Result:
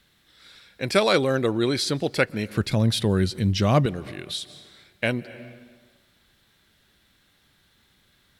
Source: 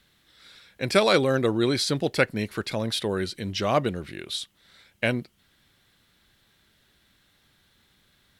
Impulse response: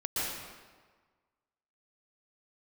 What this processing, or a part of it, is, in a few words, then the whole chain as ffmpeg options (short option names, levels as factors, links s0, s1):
ducked reverb: -filter_complex "[0:a]asettb=1/sr,asplit=3[s0][s1][s2];[s0]atrim=end=2.574[s3];[s1]atrim=start=2.57:end=3.86,asetpts=PTS-STARTPTS,afade=t=in:d=0.004:c=qsin,afade=t=out:st=1.286:d=0.004:c=qsin,bass=f=250:g=13,treble=f=4000:g=3[s4];[s2]atrim=start=3.856[s5];[s3][s4]acrossfade=d=0.004:c1=hsin:c2=qsin[s6];[s6][s5]acrossfade=d=0.004:c1=qsin:c2=hsin,asplit=3[s7][s8][s9];[1:a]atrim=start_sample=2205[s10];[s8][s10]afir=irnorm=-1:irlink=0[s11];[s9]apad=whole_len=370307[s12];[s11][s12]sidechaincompress=threshold=0.00708:ratio=4:attack=22:release=113,volume=0.126[s13];[s7][s13]amix=inputs=2:normalize=0"